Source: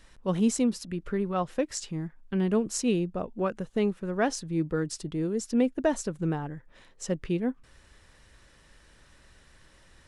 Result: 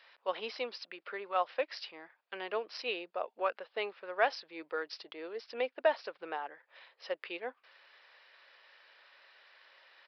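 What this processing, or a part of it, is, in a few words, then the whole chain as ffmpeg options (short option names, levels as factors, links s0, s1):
musical greeting card: -af "aresample=11025,aresample=44100,highpass=f=560:w=0.5412,highpass=f=560:w=1.3066,equalizer=f=2400:t=o:w=0.58:g=4"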